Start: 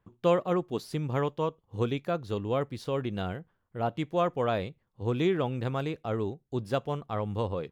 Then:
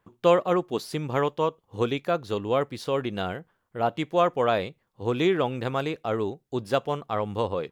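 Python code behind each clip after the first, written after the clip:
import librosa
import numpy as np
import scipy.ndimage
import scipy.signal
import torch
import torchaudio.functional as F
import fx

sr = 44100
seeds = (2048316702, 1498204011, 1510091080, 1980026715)

y = fx.low_shelf(x, sr, hz=200.0, db=-11.0)
y = y * librosa.db_to_amplitude(6.5)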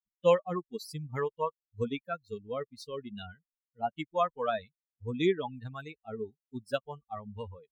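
y = fx.bin_expand(x, sr, power=3.0)
y = y * librosa.db_to_amplitude(-1.0)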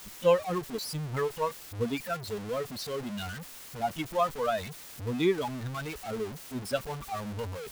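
y = x + 0.5 * 10.0 ** (-34.5 / 20.0) * np.sign(x)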